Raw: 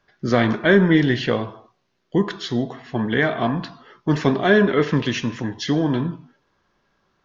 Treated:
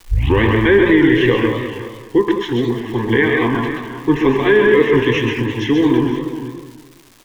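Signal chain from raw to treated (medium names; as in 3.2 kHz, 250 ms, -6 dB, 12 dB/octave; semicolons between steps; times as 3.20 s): tape start-up on the opening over 0.44 s; low-pass 4.6 kHz 12 dB/octave; peaking EQ 740 Hz -11.5 dB 0.29 oct; static phaser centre 920 Hz, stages 8; multi-tap echo 130/139/477/518 ms -7.5/-6.5/-17.5/-15.5 dB; crackle 380 per s -41 dBFS; bass shelf 64 Hz +7 dB; loudness maximiser +10.5 dB; modulated delay 209 ms, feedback 37%, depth 179 cents, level -9.5 dB; trim -2.5 dB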